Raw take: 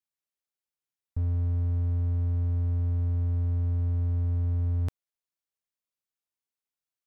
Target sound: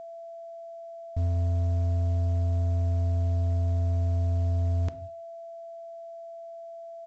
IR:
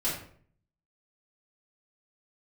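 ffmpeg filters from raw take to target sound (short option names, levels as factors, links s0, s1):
-filter_complex "[0:a]asplit=2[s0][s1];[s1]adelay=71,lowpass=f=1100:p=1,volume=0.075,asplit=2[s2][s3];[s3]adelay=71,lowpass=f=1100:p=1,volume=0.26[s4];[s0][s2][s4]amix=inputs=3:normalize=0,asplit=2[s5][s6];[1:a]atrim=start_sample=2205,afade=t=out:st=0.27:d=0.01,atrim=end_sample=12348[s7];[s6][s7]afir=irnorm=-1:irlink=0,volume=0.112[s8];[s5][s8]amix=inputs=2:normalize=0,aeval=exprs='val(0)+0.0112*sin(2*PI*670*n/s)':c=same" -ar 16000 -c:a pcm_mulaw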